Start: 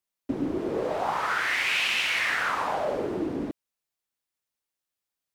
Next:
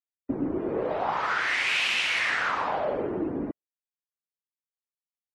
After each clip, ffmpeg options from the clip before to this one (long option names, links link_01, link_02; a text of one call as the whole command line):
ffmpeg -i in.wav -af "afftdn=noise_reduction=23:noise_floor=-49" out.wav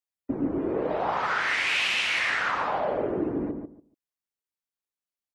ffmpeg -i in.wav -filter_complex "[0:a]asplit=2[link_01][link_02];[link_02]adelay=144,lowpass=frequency=930:poles=1,volume=-4.5dB,asplit=2[link_03][link_04];[link_04]adelay=144,lowpass=frequency=930:poles=1,volume=0.21,asplit=2[link_05][link_06];[link_06]adelay=144,lowpass=frequency=930:poles=1,volume=0.21[link_07];[link_01][link_03][link_05][link_07]amix=inputs=4:normalize=0" out.wav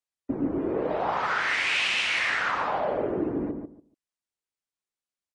ffmpeg -i in.wav -af "aresample=22050,aresample=44100" out.wav